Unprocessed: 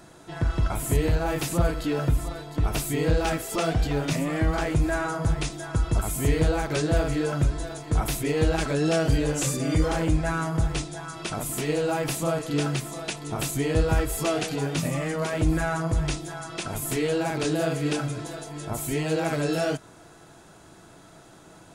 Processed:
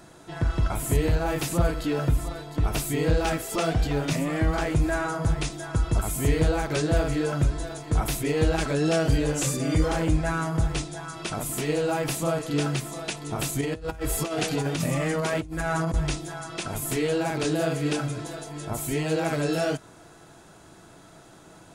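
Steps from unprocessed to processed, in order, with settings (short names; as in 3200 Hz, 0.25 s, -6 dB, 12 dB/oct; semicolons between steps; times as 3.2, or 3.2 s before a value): 13.61–15.94 negative-ratio compressor -27 dBFS, ratio -0.5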